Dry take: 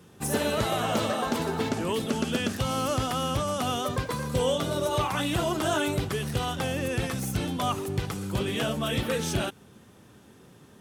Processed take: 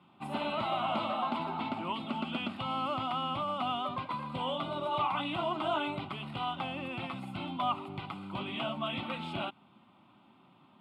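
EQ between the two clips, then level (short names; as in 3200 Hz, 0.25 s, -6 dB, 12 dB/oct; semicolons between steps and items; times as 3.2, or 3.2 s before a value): BPF 260–2600 Hz; fixed phaser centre 1700 Hz, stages 6; 0.0 dB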